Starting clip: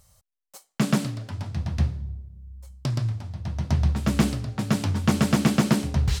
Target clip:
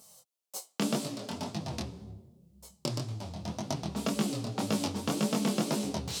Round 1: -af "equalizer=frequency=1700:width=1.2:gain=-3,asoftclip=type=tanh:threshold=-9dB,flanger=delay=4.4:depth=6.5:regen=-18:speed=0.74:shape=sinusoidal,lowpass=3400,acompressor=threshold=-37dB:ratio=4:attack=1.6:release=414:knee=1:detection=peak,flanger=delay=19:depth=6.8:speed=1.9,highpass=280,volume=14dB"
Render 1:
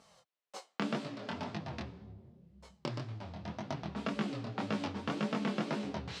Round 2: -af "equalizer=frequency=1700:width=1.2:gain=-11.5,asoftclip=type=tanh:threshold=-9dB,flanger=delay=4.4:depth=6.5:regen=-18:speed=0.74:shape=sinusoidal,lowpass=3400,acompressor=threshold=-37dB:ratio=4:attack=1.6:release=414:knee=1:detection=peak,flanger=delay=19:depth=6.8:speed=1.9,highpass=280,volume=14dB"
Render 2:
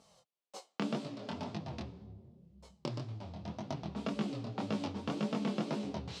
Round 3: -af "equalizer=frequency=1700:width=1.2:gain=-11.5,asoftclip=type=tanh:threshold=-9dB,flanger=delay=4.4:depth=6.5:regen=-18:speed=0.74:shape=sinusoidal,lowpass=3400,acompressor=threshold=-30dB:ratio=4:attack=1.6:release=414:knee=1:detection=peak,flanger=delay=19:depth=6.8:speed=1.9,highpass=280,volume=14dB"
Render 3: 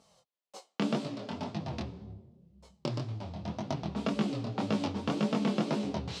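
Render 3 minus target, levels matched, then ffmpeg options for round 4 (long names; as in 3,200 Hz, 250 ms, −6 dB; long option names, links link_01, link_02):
4,000 Hz band −4.0 dB
-af "equalizer=frequency=1700:width=1.2:gain=-11.5,asoftclip=type=tanh:threshold=-9dB,flanger=delay=4.4:depth=6.5:regen=-18:speed=0.74:shape=sinusoidal,acompressor=threshold=-30dB:ratio=4:attack=1.6:release=414:knee=1:detection=peak,flanger=delay=19:depth=6.8:speed=1.9,highpass=280,volume=14dB"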